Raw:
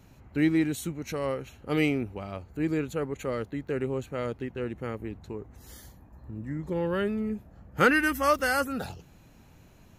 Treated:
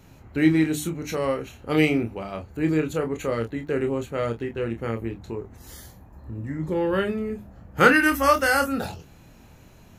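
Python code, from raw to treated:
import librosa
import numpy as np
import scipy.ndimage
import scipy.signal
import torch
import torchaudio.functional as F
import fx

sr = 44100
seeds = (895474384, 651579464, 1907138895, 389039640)

y = fx.hum_notches(x, sr, base_hz=50, count=6)
y = fx.room_early_taps(y, sr, ms=(26, 44), db=(-6.5, -15.0))
y = F.gain(torch.from_numpy(y), 4.5).numpy()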